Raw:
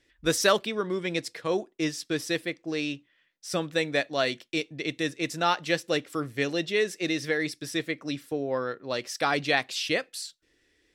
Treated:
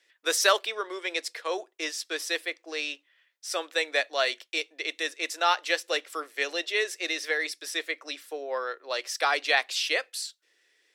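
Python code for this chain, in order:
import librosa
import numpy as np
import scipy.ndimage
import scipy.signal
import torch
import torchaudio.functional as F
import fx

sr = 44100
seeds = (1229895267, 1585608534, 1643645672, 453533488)

y = scipy.signal.sosfilt(scipy.signal.bessel(8, 660.0, 'highpass', norm='mag', fs=sr, output='sos'), x)
y = y * 10.0 ** (2.5 / 20.0)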